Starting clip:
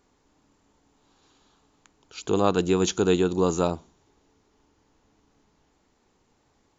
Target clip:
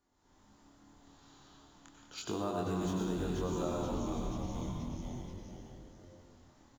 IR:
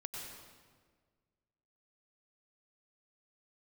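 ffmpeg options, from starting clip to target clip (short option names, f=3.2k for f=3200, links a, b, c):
-filter_complex "[0:a]asplit=2[a][b];[b]acrusher=bits=3:mode=log:mix=0:aa=0.000001,volume=-10.5dB[c];[a][c]amix=inputs=2:normalize=0,asplit=6[d][e][f][g][h][i];[e]adelay=481,afreqshift=-140,volume=-8dB[j];[f]adelay=962,afreqshift=-280,volume=-15.3dB[k];[g]adelay=1443,afreqshift=-420,volume=-22.7dB[l];[h]adelay=1924,afreqshift=-560,volume=-30dB[m];[i]adelay=2405,afreqshift=-700,volume=-37.3dB[n];[d][j][k][l][m][n]amix=inputs=6:normalize=0,acrossover=split=290|1500[o][p][q];[q]asoftclip=type=tanh:threshold=-27.5dB[r];[o][p][r]amix=inputs=3:normalize=0[s];[1:a]atrim=start_sample=2205[t];[s][t]afir=irnorm=-1:irlink=0,dynaudnorm=f=110:g=5:m=11dB,superequalizer=7b=0.562:12b=0.631,flanger=delay=22.5:depth=3.5:speed=0.34,acompressor=threshold=-30dB:ratio=2.5,volume=-6.5dB"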